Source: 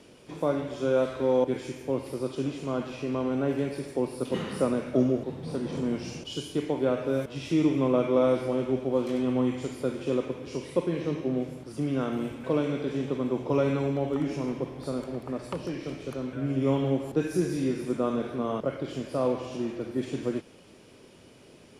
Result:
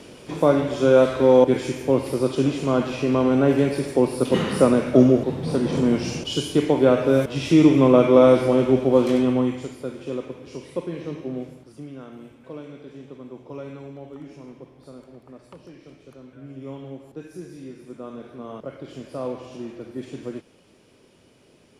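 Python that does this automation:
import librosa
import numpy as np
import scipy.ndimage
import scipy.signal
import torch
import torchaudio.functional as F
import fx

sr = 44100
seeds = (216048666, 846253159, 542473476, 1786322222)

y = fx.gain(x, sr, db=fx.line((9.12, 9.5), (9.79, -2.0), (11.45, -2.0), (11.97, -11.0), (17.78, -11.0), (19.04, -3.0)))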